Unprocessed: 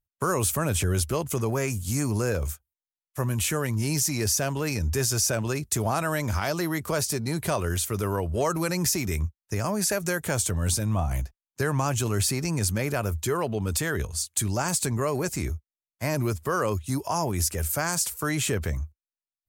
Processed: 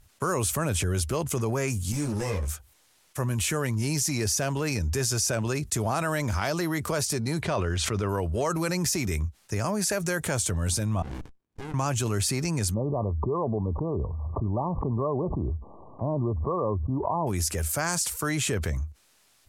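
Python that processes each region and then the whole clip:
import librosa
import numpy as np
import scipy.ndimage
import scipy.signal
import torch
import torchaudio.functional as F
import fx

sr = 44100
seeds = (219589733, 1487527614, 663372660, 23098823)

y = fx.chain(x, sr, fx.lower_of_two(delay_ms=0.36),
    fx.ensemble(), at=(1.92, 2.48))
y = fx.chain(y, sr, fx.lowpass(hz=4500.0, slope=12),
    fx.sustainer(db_per_s=22.0), at=(7.42, 8.09))
y = fx.chain(y, sr, fx.highpass(hz=240.0, slope=12),
    fx.level_steps(step_db=21),
    fx.running_max(window=65), at=(11.02, 11.74))
y = fx.chain(y, sr, fx.brickwall_lowpass(high_hz=1200.0),
    fx.pre_swell(db_per_s=38.0), at=(12.74, 17.27))
y = scipy.signal.sosfilt(scipy.signal.butter(2, 11000.0, 'lowpass', fs=sr, output='sos'), y)
y = fx.env_flatten(y, sr, amount_pct=50)
y = F.gain(torch.from_numpy(y), -2.5).numpy()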